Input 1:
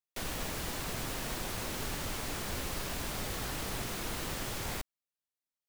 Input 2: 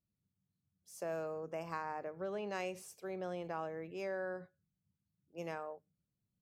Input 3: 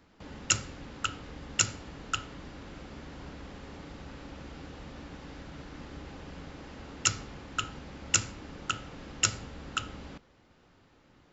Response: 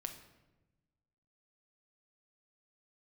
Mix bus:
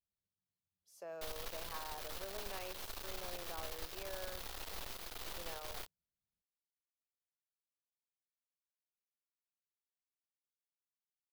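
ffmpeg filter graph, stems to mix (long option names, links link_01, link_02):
-filter_complex "[0:a]acrusher=bits=4:dc=4:mix=0:aa=0.000001,adelay=1050,volume=-4.5dB[link_01];[1:a]volume=-6dB[link_02];[link_01][link_02]amix=inputs=2:normalize=0,equalizer=frequency=125:width_type=o:width=1:gain=-11,equalizer=frequency=250:width_type=o:width=1:gain=-9,equalizer=frequency=2000:width_type=o:width=1:gain=-3,equalizer=frequency=4000:width_type=o:width=1:gain=3,equalizer=frequency=8000:width_type=o:width=1:gain=-6"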